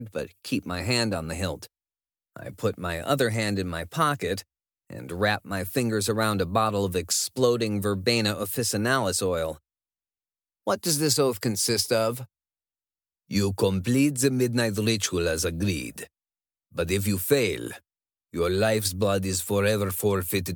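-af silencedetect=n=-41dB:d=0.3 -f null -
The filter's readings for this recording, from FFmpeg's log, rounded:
silence_start: 1.66
silence_end: 2.36 | silence_duration: 0.71
silence_start: 4.41
silence_end: 4.90 | silence_duration: 0.49
silence_start: 9.57
silence_end: 10.67 | silence_duration: 1.10
silence_start: 12.25
silence_end: 13.31 | silence_duration: 1.06
silence_start: 16.05
silence_end: 16.75 | silence_duration: 0.71
silence_start: 17.78
silence_end: 18.34 | silence_duration: 0.56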